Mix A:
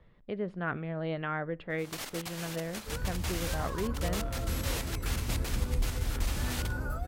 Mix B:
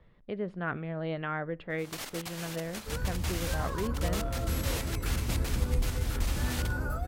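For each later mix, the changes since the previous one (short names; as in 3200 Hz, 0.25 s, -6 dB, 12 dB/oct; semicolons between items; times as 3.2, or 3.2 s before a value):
second sound: send +11.5 dB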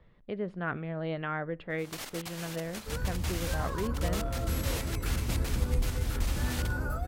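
first sound: send -10.5 dB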